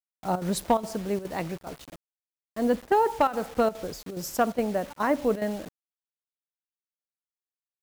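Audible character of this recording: a quantiser's noise floor 8-bit, dither none; chopped level 2.4 Hz, depth 65%, duty 85%

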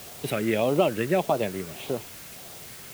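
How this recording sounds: phasing stages 4, 1.7 Hz, lowest notch 780–1800 Hz; a quantiser's noise floor 8-bit, dither triangular

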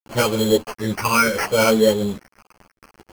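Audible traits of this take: a quantiser's noise floor 6-bit, dither none; phasing stages 8, 0.7 Hz, lowest notch 560–3100 Hz; aliases and images of a low sample rate 3700 Hz, jitter 0%; a shimmering, thickened sound

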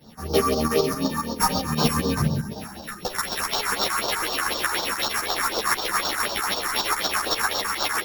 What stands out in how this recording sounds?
a buzz of ramps at a fixed pitch in blocks of 8 samples; phasing stages 4, 4 Hz, lowest notch 500–2100 Hz; tremolo saw up 7.5 Hz, depth 65%; a shimmering, thickened sound

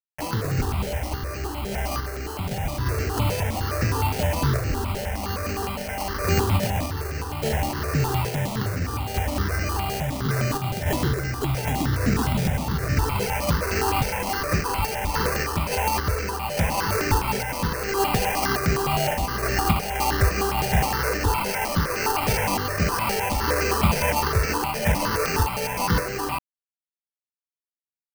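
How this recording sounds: a quantiser's noise floor 6-bit, dither none; random-step tremolo; aliases and images of a low sample rate 3600 Hz, jitter 0%; notches that jump at a steady rate 9.7 Hz 300–3400 Hz

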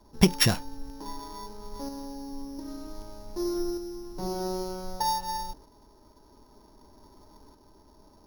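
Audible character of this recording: a buzz of ramps at a fixed pitch in blocks of 8 samples; tremolo saw up 0.53 Hz, depth 40%

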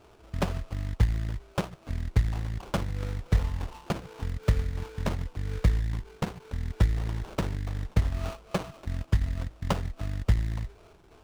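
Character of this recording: a buzz of ramps at a fixed pitch in blocks of 8 samples; phasing stages 12, 2.7 Hz, lowest notch 730–4200 Hz; aliases and images of a low sample rate 1900 Hz, jitter 20%; IMA ADPCM

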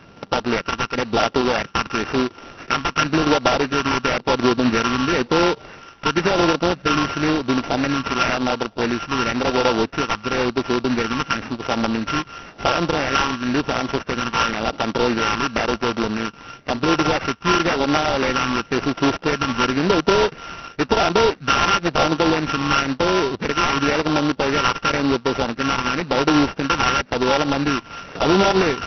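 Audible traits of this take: a buzz of ramps at a fixed pitch in blocks of 32 samples; phasing stages 12, 0.96 Hz, lowest notch 560–3200 Hz; aliases and images of a low sample rate 4200 Hz, jitter 20%; MP2

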